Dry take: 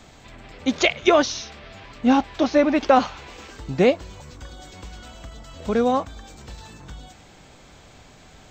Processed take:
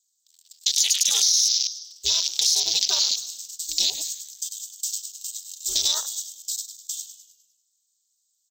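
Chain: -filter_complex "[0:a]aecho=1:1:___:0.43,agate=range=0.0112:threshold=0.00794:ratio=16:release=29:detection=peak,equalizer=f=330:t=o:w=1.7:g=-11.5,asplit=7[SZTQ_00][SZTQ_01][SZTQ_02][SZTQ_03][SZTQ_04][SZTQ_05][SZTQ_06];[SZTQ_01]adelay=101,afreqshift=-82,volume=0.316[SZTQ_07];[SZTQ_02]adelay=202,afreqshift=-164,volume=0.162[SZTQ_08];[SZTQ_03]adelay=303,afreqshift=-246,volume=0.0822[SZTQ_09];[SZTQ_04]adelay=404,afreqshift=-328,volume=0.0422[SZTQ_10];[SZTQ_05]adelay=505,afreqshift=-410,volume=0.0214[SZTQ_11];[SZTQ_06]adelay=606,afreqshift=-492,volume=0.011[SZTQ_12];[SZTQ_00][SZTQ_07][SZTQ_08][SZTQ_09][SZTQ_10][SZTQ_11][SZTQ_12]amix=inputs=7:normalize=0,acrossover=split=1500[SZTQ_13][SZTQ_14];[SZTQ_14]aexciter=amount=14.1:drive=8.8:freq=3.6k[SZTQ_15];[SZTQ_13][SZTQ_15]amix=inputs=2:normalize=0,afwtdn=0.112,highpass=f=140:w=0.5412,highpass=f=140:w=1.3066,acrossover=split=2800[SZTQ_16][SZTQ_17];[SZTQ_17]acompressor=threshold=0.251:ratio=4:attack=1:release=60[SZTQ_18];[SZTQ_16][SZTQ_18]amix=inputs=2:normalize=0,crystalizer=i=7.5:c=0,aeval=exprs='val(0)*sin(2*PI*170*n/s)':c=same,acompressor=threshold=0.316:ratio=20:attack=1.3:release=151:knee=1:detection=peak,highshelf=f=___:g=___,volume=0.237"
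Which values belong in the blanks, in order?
5.1, 2.5k, 12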